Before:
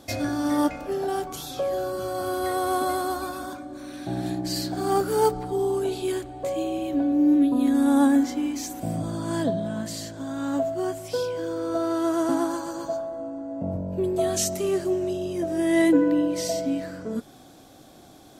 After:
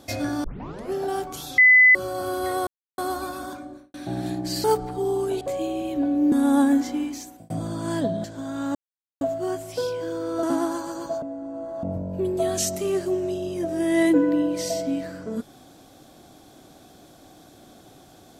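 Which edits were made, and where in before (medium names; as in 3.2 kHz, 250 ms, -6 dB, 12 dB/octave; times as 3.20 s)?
0.44 s: tape start 0.48 s
1.58–1.95 s: bleep 2.01 kHz -10 dBFS
2.67–2.98 s: mute
3.63–3.94 s: studio fade out
4.64–5.18 s: delete
5.95–6.38 s: delete
7.29–7.75 s: delete
8.42–8.93 s: fade out
9.67–10.06 s: delete
10.57 s: insert silence 0.46 s
11.79–12.22 s: delete
13.01–13.62 s: reverse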